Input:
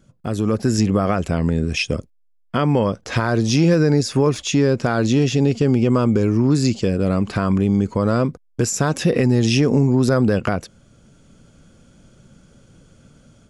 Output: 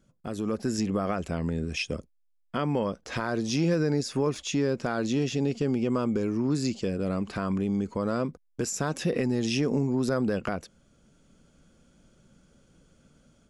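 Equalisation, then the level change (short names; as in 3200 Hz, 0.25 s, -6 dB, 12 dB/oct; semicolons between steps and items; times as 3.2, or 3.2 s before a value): bell 110 Hz -8.5 dB 0.53 oct; -9.0 dB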